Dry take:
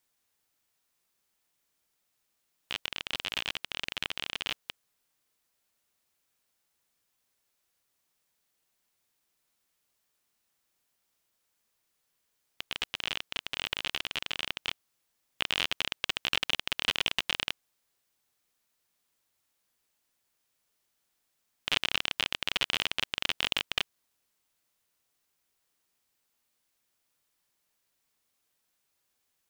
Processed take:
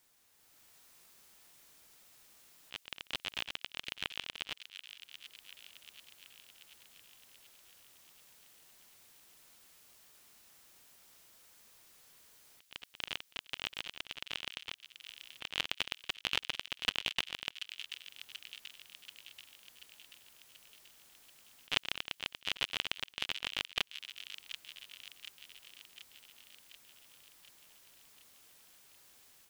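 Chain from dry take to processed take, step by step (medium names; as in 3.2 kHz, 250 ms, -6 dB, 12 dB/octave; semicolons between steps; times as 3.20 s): slow attack 729 ms; on a send: feedback echo behind a high-pass 734 ms, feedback 60%, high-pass 2.3 kHz, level -9 dB; on the sum: level rider gain up to 8 dB; trim +7.5 dB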